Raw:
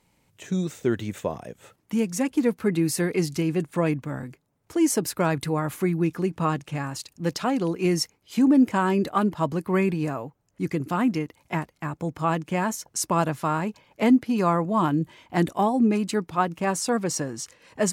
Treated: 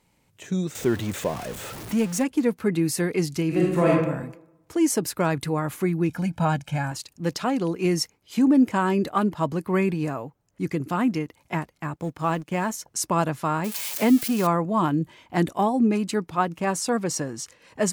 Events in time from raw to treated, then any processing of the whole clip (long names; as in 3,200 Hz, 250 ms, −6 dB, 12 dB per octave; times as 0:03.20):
0:00.75–0:02.24: converter with a step at zero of −31.5 dBFS
0:03.47–0:03.89: thrown reverb, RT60 0.9 s, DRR −4.5 dB
0:06.09–0:06.92: comb filter 1.3 ms, depth 92%
0:11.96–0:12.75: mu-law and A-law mismatch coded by A
0:13.64–0:14.47: spike at every zero crossing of −20.5 dBFS